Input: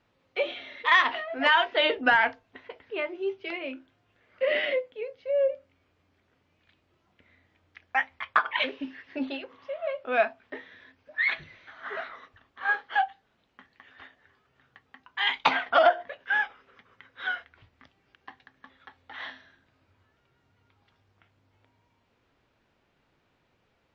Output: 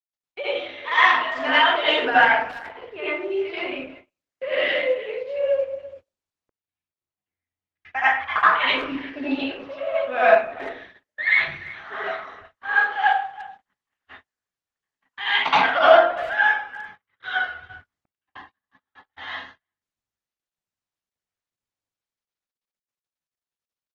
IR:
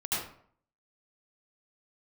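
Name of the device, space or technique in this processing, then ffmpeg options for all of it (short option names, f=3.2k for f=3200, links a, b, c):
speakerphone in a meeting room: -filter_complex "[1:a]atrim=start_sample=2205[a];[0:a][a]afir=irnorm=-1:irlink=0,asplit=2[b][c];[c]adelay=340,highpass=300,lowpass=3.4k,asoftclip=type=hard:threshold=-10.5dB,volume=-18dB[d];[b][d]amix=inputs=2:normalize=0,dynaudnorm=f=430:g=21:m=11dB,agate=range=-39dB:threshold=-41dB:ratio=16:detection=peak,volume=-1dB" -ar 48000 -c:a libopus -b:a 16k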